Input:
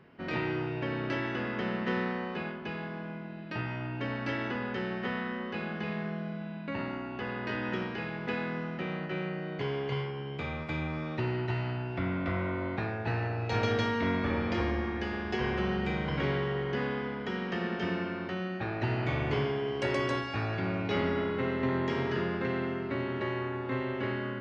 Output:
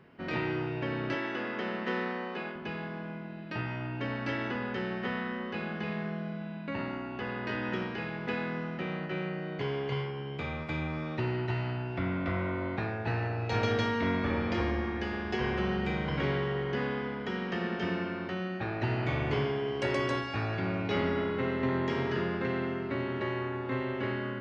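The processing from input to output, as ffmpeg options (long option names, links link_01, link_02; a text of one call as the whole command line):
ffmpeg -i in.wav -filter_complex "[0:a]asettb=1/sr,asplit=3[link_01][link_02][link_03];[link_01]atrim=end=1.144[link_04];[link_02]atrim=start=1.14:end=2.56,asetpts=PTS-STARTPTS,afade=type=in:duration=0.004:curve=qsin,afade=type=out:start_time=1.416:duration=0.004:curve=qsin,highpass=240[link_05];[link_03]atrim=start=2.556[link_06];[link_04][link_05]acrossfade=duration=0.004:curve1=hsin:curve2=qsin[link_07];[link_07][link_06]acrossfade=duration=0.004:curve1=qsin:curve2=hsin" out.wav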